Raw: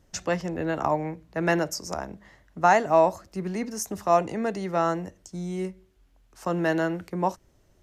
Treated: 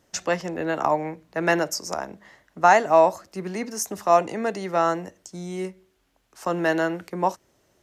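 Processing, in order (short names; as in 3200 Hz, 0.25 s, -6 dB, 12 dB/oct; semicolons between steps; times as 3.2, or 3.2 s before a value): HPF 330 Hz 6 dB/oct; gain +4 dB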